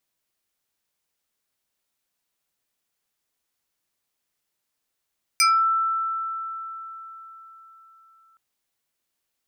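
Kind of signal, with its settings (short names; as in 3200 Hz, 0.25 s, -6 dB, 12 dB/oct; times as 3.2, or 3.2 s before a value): FM tone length 2.97 s, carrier 1330 Hz, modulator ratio 2.76, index 2.7, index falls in 0.27 s exponential, decay 4.22 s, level -14 dB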